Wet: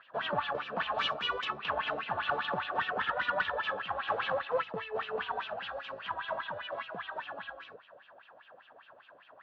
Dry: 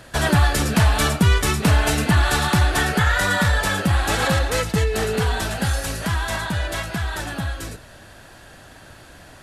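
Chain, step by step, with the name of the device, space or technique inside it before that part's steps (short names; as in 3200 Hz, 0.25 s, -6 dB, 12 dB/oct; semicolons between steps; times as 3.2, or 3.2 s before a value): 0.94–1.45 bell 7000 Hz +15 dB 1.5 oct; wah-wah guitar rig (wah 5 Hz 500–3100 Hz, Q 5.4; tube stage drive 22 dB, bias 0.45; speaker cabinet 76–3500 Hz, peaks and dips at 82 Hz -7 dB, 330 Hz -4 dB, 1100 Hz +6 dB, 2100 Hz -8 dB); gain +1.5 dB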